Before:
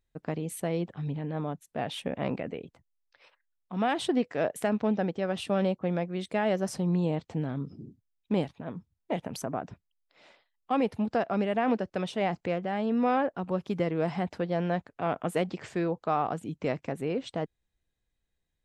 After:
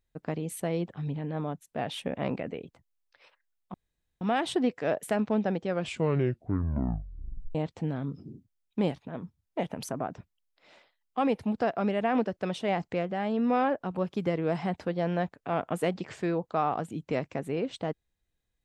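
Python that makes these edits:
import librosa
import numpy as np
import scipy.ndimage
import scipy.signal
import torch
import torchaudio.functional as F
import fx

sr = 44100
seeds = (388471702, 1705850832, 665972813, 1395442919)

y = fx.edit(x, sr, fx.insert_room_tone(at_s=3.74, length_s=0.47),
    fx.tape_stop(start_s=5.18, length_s=1.9), tone=tone)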